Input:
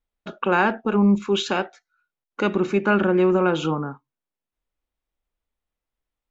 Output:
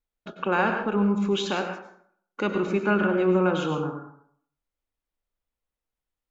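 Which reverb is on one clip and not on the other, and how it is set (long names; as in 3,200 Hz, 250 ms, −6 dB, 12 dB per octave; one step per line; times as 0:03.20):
dense smooth reverb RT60 0.61 s, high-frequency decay 0.6×, pre-delay 85 ms, DRR 5 dB
level −4.5 dB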